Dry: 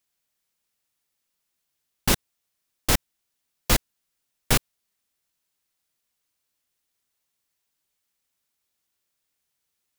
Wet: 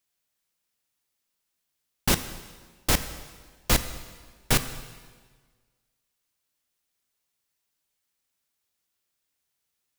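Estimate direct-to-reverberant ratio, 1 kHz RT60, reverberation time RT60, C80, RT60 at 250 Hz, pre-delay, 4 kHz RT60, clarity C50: 10.0 dB, 1.5 s, 1.5 s, 13.0 dB, 1.5 s, 6 ms, 1.4 s, 11.5 dB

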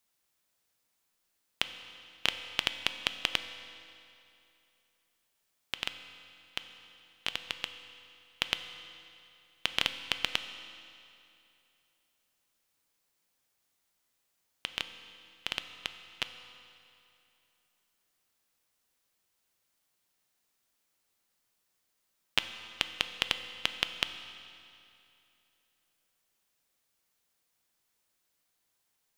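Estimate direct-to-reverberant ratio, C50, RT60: 8.5 dB, 9.5 dB, 2.7 s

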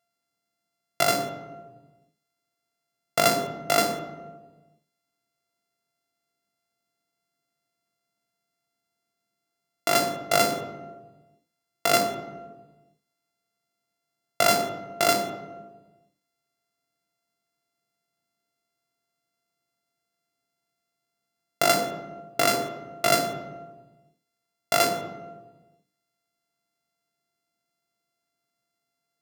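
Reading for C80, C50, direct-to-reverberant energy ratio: 9.5 dB, 7.0 dB, 4.0 dB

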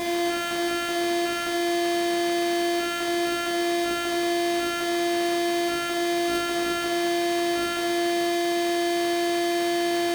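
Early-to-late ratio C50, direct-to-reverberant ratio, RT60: 3.0 dB, -1.0 dB, 1.3 s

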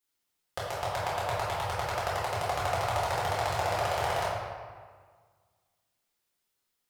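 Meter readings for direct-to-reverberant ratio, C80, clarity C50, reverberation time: -8.0 dB, 1.0 dB, -1.0 dB, 1.6 s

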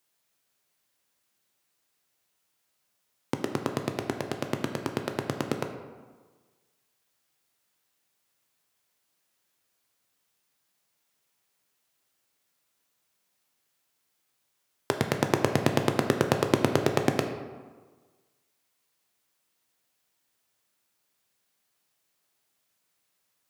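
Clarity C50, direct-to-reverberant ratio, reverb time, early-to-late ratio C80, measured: 7.5 dB, 5.0 dB, 1.4 s, 9.5 dB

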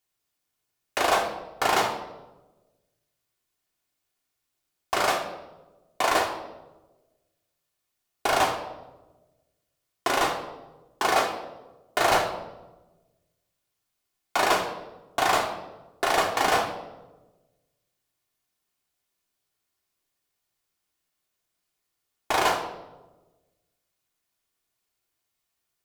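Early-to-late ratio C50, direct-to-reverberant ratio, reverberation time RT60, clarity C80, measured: 7.0 dB, 0.0 dB, 1.1 s, 9.0 dB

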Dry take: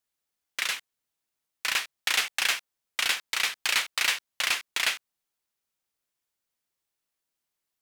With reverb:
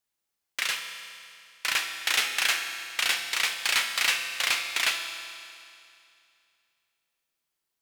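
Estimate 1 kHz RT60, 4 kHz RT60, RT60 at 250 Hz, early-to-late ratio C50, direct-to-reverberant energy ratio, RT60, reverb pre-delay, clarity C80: 2.5 s, 2.4 s, 2.5 s, 6.5 dB, 5.0 dB, 2.5 s, 6 ms, 7.0 dB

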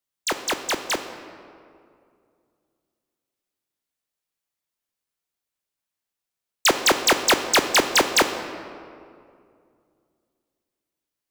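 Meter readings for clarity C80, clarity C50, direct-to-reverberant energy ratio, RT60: 10.0 dB, 9.0 dB, 7.5 dB, 2.3 s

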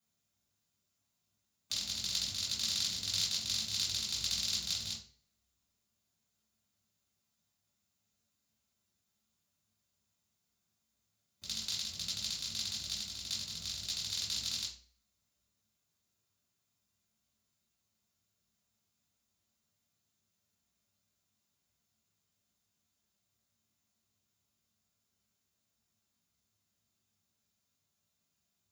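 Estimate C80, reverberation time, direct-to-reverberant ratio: 12.0 dB, 0.45 s, -5.5 dB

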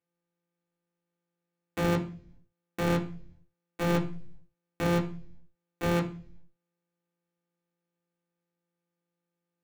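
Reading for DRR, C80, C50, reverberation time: -3.0 dB, 17.0 dB, 12.5 dB, 0.45 s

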